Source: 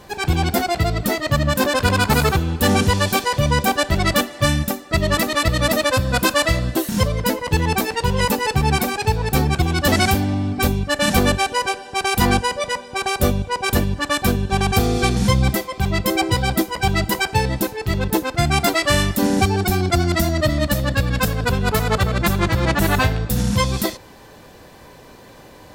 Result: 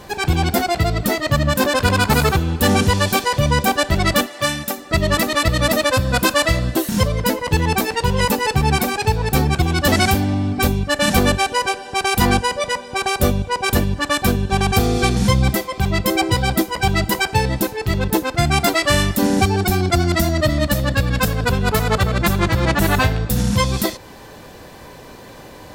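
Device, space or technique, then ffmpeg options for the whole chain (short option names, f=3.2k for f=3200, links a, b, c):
parallel compression: -filter_complex "[0:a]asplit=2[a][b];[b]acompressor=threshold=-29dB:ratio=6,volume=-3.5dB[c];[a][c]amix=inputs=2:normalize=0,asettb=1/sr,asplit=3[d][e][f];[d]atrim=end=4.264[g];[e]atrim=start=4.26:end=4.78,asetpts=PTS-STARTPTS,afade=t=in:d=0.004:c=qsin,afade=t=out:st=0.516:d=0.004:c=qsin,highpass=f=450:p=1[h];[f]atrim=start=4.776[i];[g][h]acrossfade=d=0.004:c1=hsin:c2=qsin[j];[j][i]acrossfade=d=0.004:c1=qsin:c2=hsin"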